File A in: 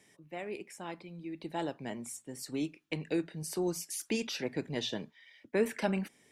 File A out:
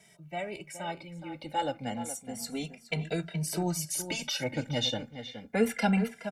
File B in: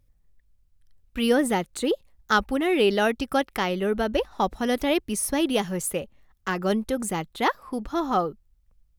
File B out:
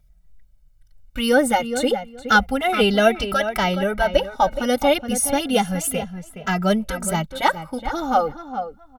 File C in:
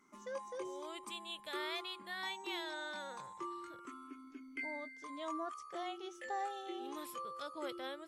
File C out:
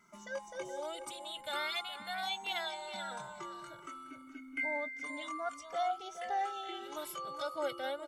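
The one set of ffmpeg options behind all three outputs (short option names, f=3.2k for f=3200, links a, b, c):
-filter_complex "[0:a]aecho=1:1:1.4:0.66,asplit=2[a][b];[b]adelay=420,lowpass=f=2.6k:p=1,volume=-10dB,asplit=2[c][d];[d]adelay=420,lowpass=f=2.6k:p=1,volume=0.16[e];[a][c][e]amix=inputs=3:normalize=0,asplit=2[f][g];[g]adelay=2.6,afreqshift=-0.3[h];[f][h]amix=inputs=2:normalize=1,volume=7dB"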